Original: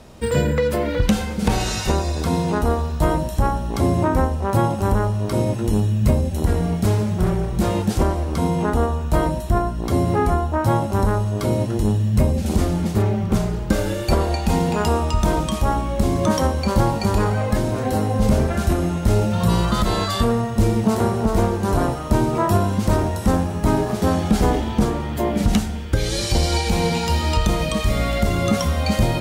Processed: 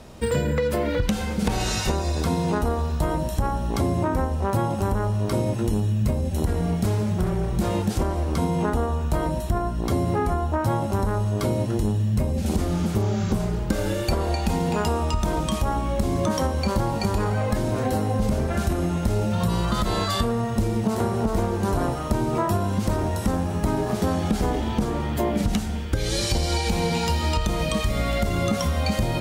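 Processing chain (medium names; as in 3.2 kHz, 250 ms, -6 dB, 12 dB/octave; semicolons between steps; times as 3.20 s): spectral replace 12.73–13.37 s, 1.2–7.5 kHz; compression, threshold -19 dBFS, peak gain reduction 8 dB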